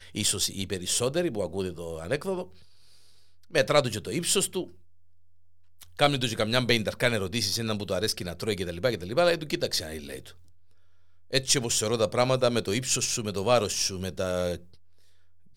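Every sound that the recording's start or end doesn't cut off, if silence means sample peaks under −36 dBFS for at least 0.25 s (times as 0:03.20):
0:03.54–0:04.66
0:05.81–0:10.30
0:11.33–0:14.57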